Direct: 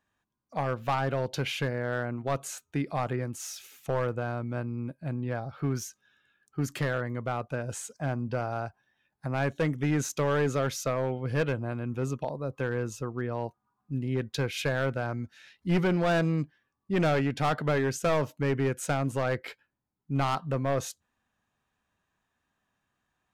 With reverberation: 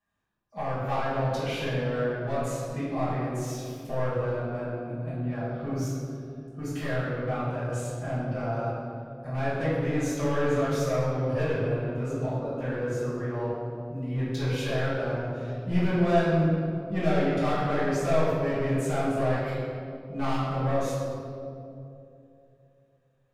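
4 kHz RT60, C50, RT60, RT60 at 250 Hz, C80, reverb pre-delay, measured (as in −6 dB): 1.3 s, −2.0 dB, 2.8 s, 3.2 s, 0.0 dB, 5 ms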